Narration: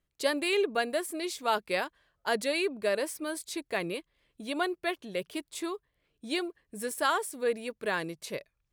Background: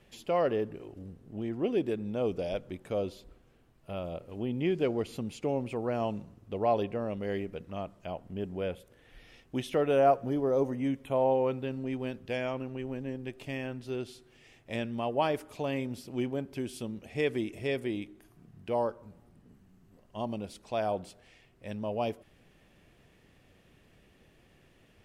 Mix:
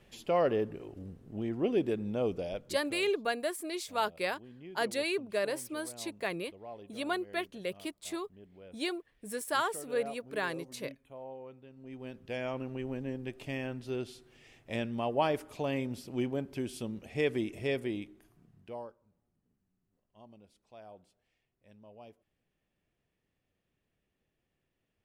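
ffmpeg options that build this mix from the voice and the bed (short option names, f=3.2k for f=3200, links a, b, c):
-filter_complex "[0:a]adelay=2500,volume=-3dB[a];[1:a]volume=18.5dB,afade=t=out:st=2.14:d=0.88:silence=0.112202,afade=t=in:st=11.74:d=0.98:silence=0.11885,afade=t=out:st=17.71:d=1.27:silence=0.1[b];[a][b]amix=inputs=2:normalize=0"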